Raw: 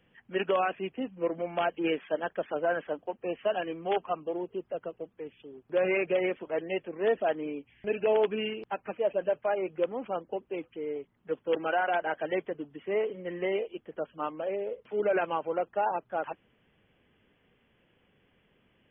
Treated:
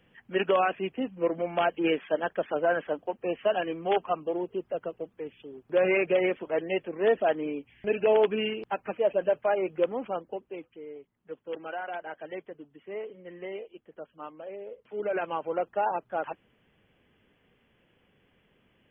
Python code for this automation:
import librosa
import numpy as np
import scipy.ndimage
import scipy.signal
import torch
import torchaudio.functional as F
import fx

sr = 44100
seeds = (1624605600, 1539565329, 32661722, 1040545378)

y = fx.gain(x, sr, db=fx.line((9.94, 3.0), (10.9, -8.0), (14.53, -8.0), (15.59, 1.0)))